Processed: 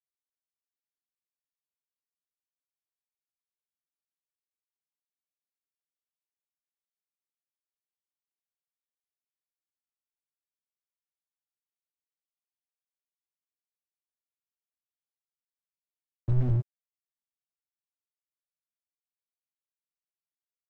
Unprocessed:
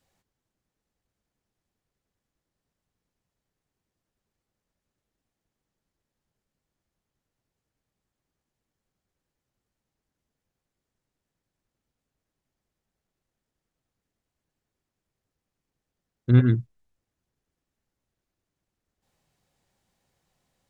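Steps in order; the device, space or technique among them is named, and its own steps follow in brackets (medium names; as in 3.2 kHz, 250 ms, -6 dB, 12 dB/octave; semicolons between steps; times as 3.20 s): early transistor amplifier (crossover distortion -43.5 dBFS; slew-rate limiter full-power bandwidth 4 Hz); trim +6.5 dB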